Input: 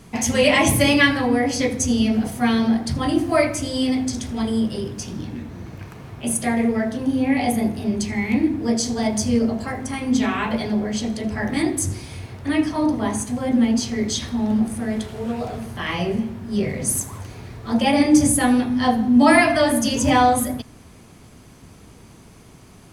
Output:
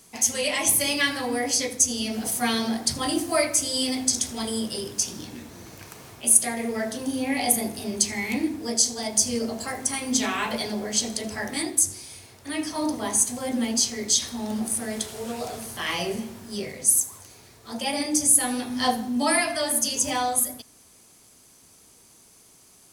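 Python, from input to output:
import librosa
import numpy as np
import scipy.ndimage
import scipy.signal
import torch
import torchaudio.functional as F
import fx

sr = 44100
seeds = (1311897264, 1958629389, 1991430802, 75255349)

y = fx.bass_treble(x, sr, bass_db=-10, treble_db=15)
y = fx.rider(y, sr, range_db=4, speed_s=0.5)
y = y * 10.0 ** (-7.0 / 20.0)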